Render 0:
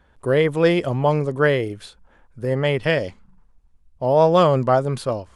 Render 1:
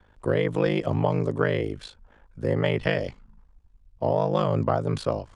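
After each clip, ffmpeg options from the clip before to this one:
ffmpeg -i in.wav -filter_complex "[0:a]lowpass=7100,aeval=exprs='val(0)*sin(2*PI*26*n/s)':channel_layout=same,acrossover=split=150[link_01][link_02];[link_02]acompressor=threshold=-21dB:ratio=10[link_03];[link_01][link_03]amix=inputs=2:normalize=0,volume=1.5dB" out.wav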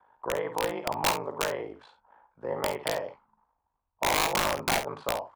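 ffmpeg -i in.wav -af "bandpass=frequency=910:width_type=q:width=3.8:csg=0,aeval=exprs='(mod(17.8*val(0)+1,2)-1)/17.8':channel_layout=same,aecho=1:1:51|65:0.316|0.168,volume=7.5dB" out.wav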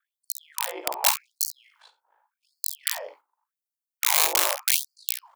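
ffmpeg -i in.wav -af "crystalizer=i=3:c=0,agate=range=-8dB:threshold=-49dB:ratio=16:detection=peak,afftfilt=real='re*gte(b*sr/1024,260*pow(4300/260,0.5+0.5*sin(2*PI*0.86*pts/sr)))':imag='im*gte(b*sr/1024,260*pow(4300/260,0.5+0.5*sin(2*PI*0.86*pts/sr)))':win_size=1024:overlap=0.75,volume=-1.5dB" out.wav

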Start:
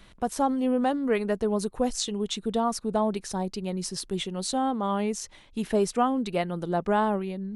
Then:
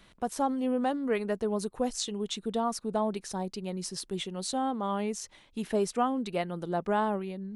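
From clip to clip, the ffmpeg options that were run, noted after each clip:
ffmpeg -i in.wav -af "lowshelf=frequency=87:gain=-7,volume=-3.5dB" out.wav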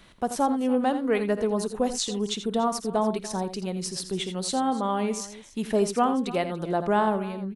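ffmpeg -i in.wav -af "aecho=1:1:54|83|289:0.1|0.282|0.133,volume=4.5dB" out.wav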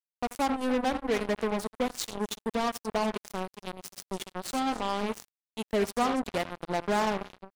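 ffmpeg -i in.wav -af "acrusher=bits=3:mix=0:aa=0.5,volume=-4.5dB" out.wav

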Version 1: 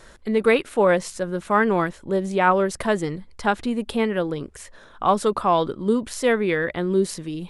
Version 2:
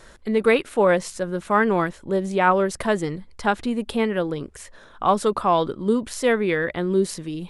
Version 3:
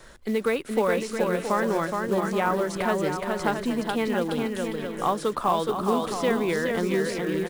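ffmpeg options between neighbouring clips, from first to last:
ffmpeg -i in.wav -af anull out.wav
ffmpeg -i in.wav -filter_complex "[0:a]acrossover=split=150|1300|5800[link_01][link_02][link_03][link_04];[link_01]acompressor=threshold=-46dB:ratio=4[link_05];[link_02]acompressor=threshold=-22dB:ratio=4[link_06];[link_03]acompressor=threshold=-32dB:ratio=4[link_07];[link_04]acompressor=threshold=-45dB:ratio=4[link_08];[link_05][link_06][link_07][link_08]amix=inputs=4:normalize=0,aecho=1:1:420|672|823.2|913.9|968.4:0.631|0.398|0.251|0.158|0.1,acrusher=bits=6:mode=log:mix=0:aa=0.000001,volume=-1dB" out.wav

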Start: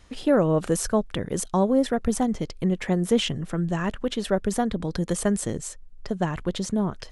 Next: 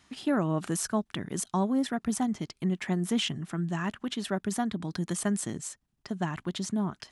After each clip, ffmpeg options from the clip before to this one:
ffmpeg -i in.wav -af "highpass=140,equalizer=frequency=500:width_type=o:width=0.47:gain=-14.5,volume=-3dB" out.wav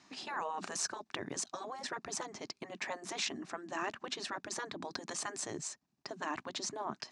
ffmpeg -i in.wav -af "afftfilt=real='re*lt(hypot(re,im),0.1)':imag='im*lt(hypot(re,im),0.1)':win_size=1024:overlap=0.75,highpass=200,equalizer=frequency=470:width_type=q:width=4:gain=-4,equalizer=frequency=1400:width_type=q:width=4:gain=-5,equalizer=frequency=2000:width_type=q:width=4:gain=-4,equalizer=frequency=3200:width_type=q:width=4:gain=-9,lowpass=frequency=6700:width=0.5412,lowpass=frequency=6700:width=1.3066,volume=3dB" out.wav

